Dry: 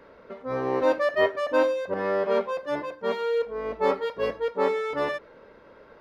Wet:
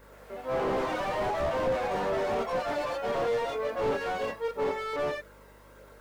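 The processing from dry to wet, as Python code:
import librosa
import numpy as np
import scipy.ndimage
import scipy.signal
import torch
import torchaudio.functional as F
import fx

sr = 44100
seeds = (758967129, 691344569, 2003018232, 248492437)

p1 = fx.low_shelf(x, sr, hz=240.0, db=-10.5)
p2 = fx.over_compress(p1, sr, threshold_db=-26.0, ratio=-1.0)
p3 = p1 + F.gain(torch.from_numpy(p2), -2.5).numpy()
p4 = fx.quant_dither(p3, sr, seeds[0], bits=10, dither='triangular')
p5 = fx.chorus_voices(p4, sr, voices=2, hz=0.51, base_ms=28, depth_ms=3.0, mix_pct=50)
p6 = fx.echo_pitch(p5, sr, ms=124, semitones=4, count=3, db_per_echo=-3.0)
p7 = fx.add_hum(p6, sr, base_hz=50, snr_db=29)
p8 = fx.slew_limit(p7, sr, full_power_hz=49.0)
y = F.gain(torch.from_numpy(p8), -3.5).numpy()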